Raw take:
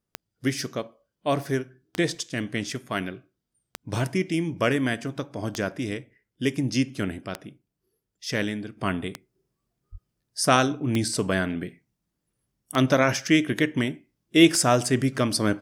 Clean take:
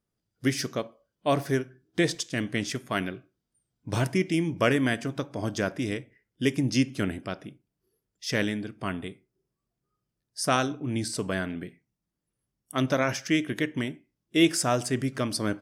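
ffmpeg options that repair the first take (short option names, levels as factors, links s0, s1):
-filter_complex "[0:a]adeclick=t=4,asplit=3[s0][s1][s2];[s0]afade=t=out:st=9.91:d=0.02[s3];[s1]highpass=f=140:w=0.5412,highpass=f=140:w=1.3066,afade=t=in:st=9.91:d=0.02,afade=t=out:st=10.03:d=0.02[s4];[s2]afade=t=in:st=10.03:d=0.02[s5];[s3][s4][s5]amix=inputs=3:normalize=0,asetnsamples=n=441:p=0,asendcmd='8.77 volume volume -5dB',volume=1"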